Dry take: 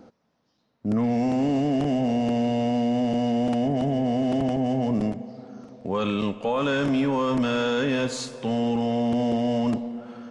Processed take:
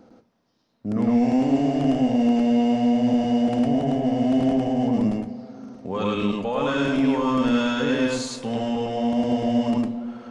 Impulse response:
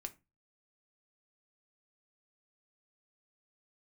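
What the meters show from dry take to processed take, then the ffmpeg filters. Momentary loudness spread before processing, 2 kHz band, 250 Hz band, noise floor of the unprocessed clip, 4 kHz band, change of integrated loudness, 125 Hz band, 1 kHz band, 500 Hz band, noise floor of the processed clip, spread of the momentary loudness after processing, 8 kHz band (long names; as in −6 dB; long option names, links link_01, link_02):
7 LU, +1.0 dB, +3.5 dB, −71 dBFS, +1.0 dB, +2.5 dB, −0.5 dB, +1.5 dB, +0.5 dB, −68 dBFS, 9 LU, can't be measured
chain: -filter_complex "[0:a]asplit=2[link_01][link_02];[1:a]atrim=start_sample=2205,adelay=105[link_03];[link_02][link_03]afir=irnorm=-1:irlink=0,volume=4dB[link_04];[link_01][link_04]amix=inputs=2:normalize=0,volume=-2dB"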